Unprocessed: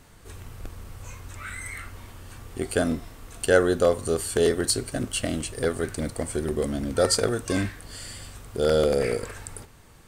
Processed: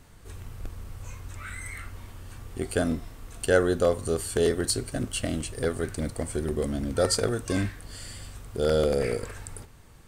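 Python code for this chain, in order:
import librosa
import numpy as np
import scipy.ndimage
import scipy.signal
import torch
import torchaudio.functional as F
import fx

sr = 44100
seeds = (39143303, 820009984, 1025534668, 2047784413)

y = fx.low_shelf(x, sr, hz=160.0, db=5.0)
y = y * 10.0 ** (-3.0 / 20.0)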